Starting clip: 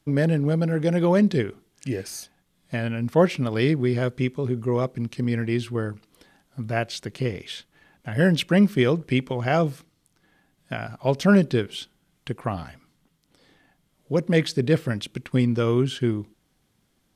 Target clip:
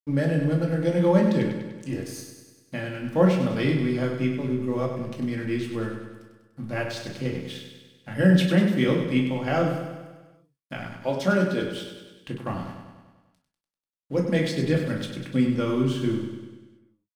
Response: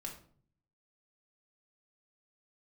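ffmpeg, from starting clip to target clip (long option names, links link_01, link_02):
-filter_complex "[0:a]aeval=exprs='sgn(val(0))*max(abs(val(0))-0.00422,0)':channel_layout=same,asettb=1/sr,asplit=3[link_01][link_02][link_03];[link_01]atrim=end=10.914[link_04];[link_02]atrim=start=10.91:end=11.62,asetpts=PTS-STARTPTS,afade=type=in:duration=0.004:curve=qsin,afade=type=out:start_time=0.706:duration=0.004:curve=qsin,highpass=220[link_05];[link_03]atrim=start=11.616[link_06];[link_04][link_05]acrossfade=duration=0.004:curve1=hsin:curve2=qsin[link_07];[link_07][link_06]acrossfade=duration=0.004:curve1=qsin:curve2=hsin,aecho=1:1:98|196|294|392|490|588|686|784:0.422|0.253|0.152|0.0911|0.0547|0.0328|0.0197|0.0118[link_08];[1:a]atrim=start_sample=2205,atrim=end_sample=3087[link_09];[link_08][link_09]afir=irnorm=-1:irlink=0"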